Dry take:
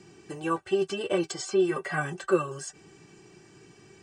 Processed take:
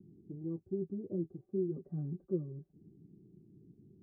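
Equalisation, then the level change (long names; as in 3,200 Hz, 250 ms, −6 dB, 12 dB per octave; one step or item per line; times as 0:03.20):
transistor ladder low-pass 290 Hz, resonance 40%
+3.5 dB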